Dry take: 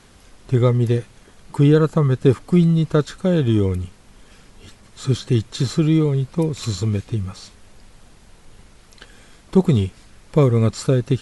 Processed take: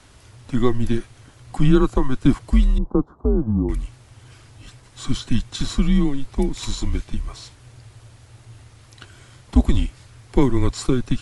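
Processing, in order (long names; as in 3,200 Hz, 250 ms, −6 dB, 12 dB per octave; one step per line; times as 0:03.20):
0:02.78–0:03.69: elliptic band-pass filter 170–1,100 Hz, stop band 40 dB
frequency shifter −130 Hz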